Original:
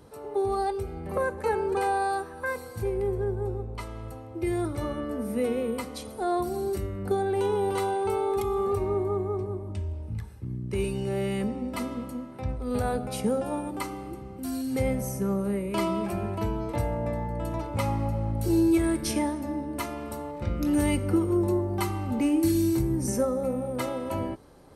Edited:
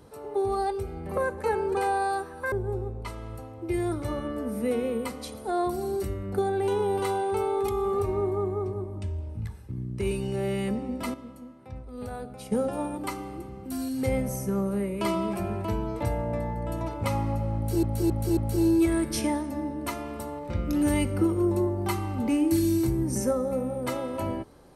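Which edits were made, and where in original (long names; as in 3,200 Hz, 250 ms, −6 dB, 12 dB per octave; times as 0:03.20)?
0:02.52–0:03.25: remove
0:11.87–0:13.25: clip gain −9 dB
0:18.29–0:18.56: repeat, 4 plays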